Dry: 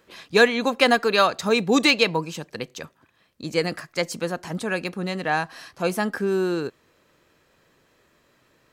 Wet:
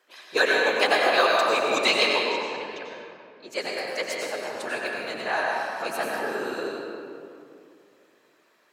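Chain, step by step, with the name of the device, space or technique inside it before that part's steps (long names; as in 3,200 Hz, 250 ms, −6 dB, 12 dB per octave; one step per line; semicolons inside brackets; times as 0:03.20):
0:01.68–0:03.50: low-pass that shuts in the quiet parts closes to 2,600 Hz, open at −15.5 dBFS
whispering ghost (random phases in short frames; high-pass filter 520 Hz 12 dB per octave; convolution reverb RT60 2.5 s, pre-delay 87 ms, DRR −2 dB)
level −4 dB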